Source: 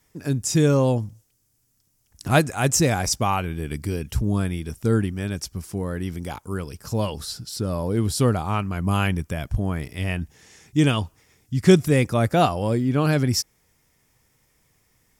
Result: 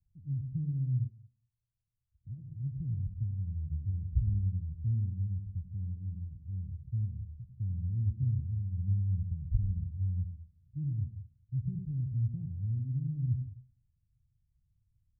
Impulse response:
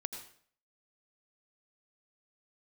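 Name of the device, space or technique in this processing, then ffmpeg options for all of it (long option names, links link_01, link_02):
club heard from the street: -filter_complex "[0:a]alimiter=limit=-11.5dB:level=0:latency=1:release=208,lowpass=frequency=120:width=0.5412,lowpass=frequency=120:width=1.3066[link_01];[1:a]atrim=start_sample=2205[link_02];[link_01][link_02]afir=irnorm=-1:irlink=0,asplit=3[link_03][link_04][link_05];[link_03]afade=type=out:start_time=1.06:duration=0.02[link_06];[link_04]lowshelf=frequency=240:gain=-11.5,afade=type=in:start_time=1.06:duration=0.02,afade=type=out:start_time=2.5:duration=0.02[link_07];[link_05]afade=type=in:start_time=2.5:duration=0.02[link_08];[link_06][link_07][link_08]amix=inputs=3:normalize=0,volume=-2dB"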